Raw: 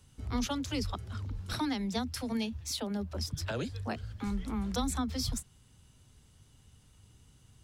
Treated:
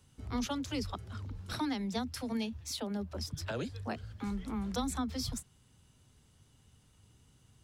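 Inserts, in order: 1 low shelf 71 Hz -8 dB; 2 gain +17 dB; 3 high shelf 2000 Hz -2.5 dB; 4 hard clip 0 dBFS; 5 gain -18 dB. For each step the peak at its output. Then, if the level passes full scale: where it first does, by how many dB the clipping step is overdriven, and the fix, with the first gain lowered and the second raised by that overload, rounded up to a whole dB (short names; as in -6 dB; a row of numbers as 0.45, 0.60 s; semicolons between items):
-21.5, -4.5, -5.0, -5.0, -23.0 dBFS; no overload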